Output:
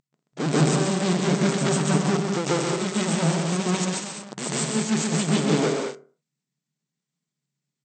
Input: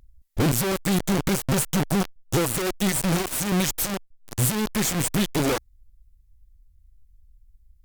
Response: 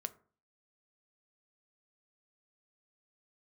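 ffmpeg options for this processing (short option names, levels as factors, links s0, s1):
-filter_complex "[0:a]aeval=exprs='0.251*(cos(1*acos(clip(val(0)/0.251,-1,1)))-cos(1*PI/2))+0.0794*(cos(8*acos(clip(val(0)/0.251,-1,1)))-cos(8*PI/2))':c=same,aecho=1:1:128.3|192.4|227.4:0.562|0.447|0.282,asplit=2[s0][s1];[1:a]atrim=start_sample=2205,afade=t=out:st=0.34:d=0.01,atrim=end_sample=15435,adelay=142[s2];[s1][s2]afir=irnorm=-1:irlink=0,volume=2.11[s3];[s0][s3]amix=inputs=2:normalize=0,afftfilt=real='re*between(b*sr/4096,130,8500)':imag='im*between(b*sr/4096,130,8500)':win_size=4096:overlap=0.75,volume=0.501"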